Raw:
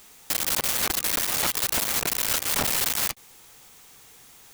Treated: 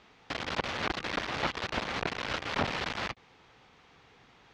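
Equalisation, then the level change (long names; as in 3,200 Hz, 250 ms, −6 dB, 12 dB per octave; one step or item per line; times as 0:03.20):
high-pass filter 40 Hz
Bessel low-pass filter 4,800 Hz, order 2
high-frequency loss of the air 230 metres
0.0 dB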